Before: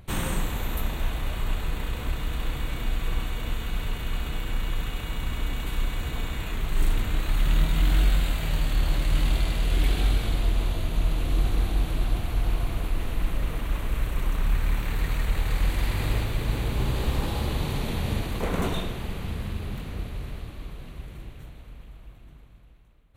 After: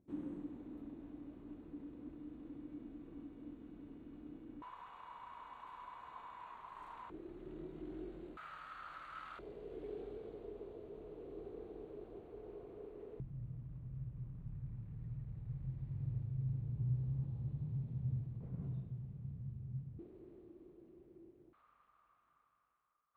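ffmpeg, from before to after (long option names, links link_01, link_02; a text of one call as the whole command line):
ffmpeg -i in.wav -af "asetnsamples=nb_out_samples=441:pad=0,asendcmd='4.62 bandpass f 1000;7.1 bandpass f 360;8.37 bandpass f 1300;9.39 bandpass f 420;13.2 bandpass f 130;19.99 bandpass f 350;21.53 bandpass f 1200',bandpass=frequency=290:width_type=q:width=10:csg=0" out.wav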